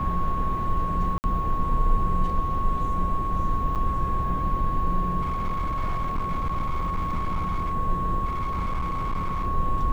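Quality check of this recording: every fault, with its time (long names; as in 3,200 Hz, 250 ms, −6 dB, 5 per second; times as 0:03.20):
whistle 1,100 Hz −27 dBFS
0:01.18–0:01.24: drop-out 59 ms
0:03.75–0:03.76: drop-out 7.7 ms
0:05.21–0:07.73: clipping −22 dBFS
0:08.25–0:09.46: clipping −23 dBFS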